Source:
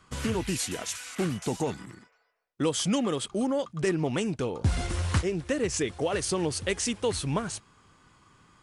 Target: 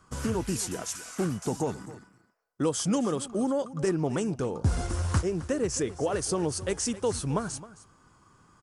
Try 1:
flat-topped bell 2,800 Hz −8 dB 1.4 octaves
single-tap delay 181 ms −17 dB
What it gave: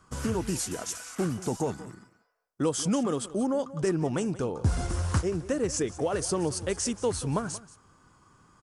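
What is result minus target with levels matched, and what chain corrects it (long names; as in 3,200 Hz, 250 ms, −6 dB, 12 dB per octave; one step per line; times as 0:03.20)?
echo 85 ms early
flat-topped bell 2,800 Hz −8 dB 1.4 octaves
single-tap delay 266 ms −17 dB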